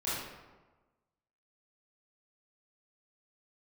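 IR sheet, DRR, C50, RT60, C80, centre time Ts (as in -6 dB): -11.5 dB, -2.0 dB, 1.2 s, 2.0 dB, 87 ms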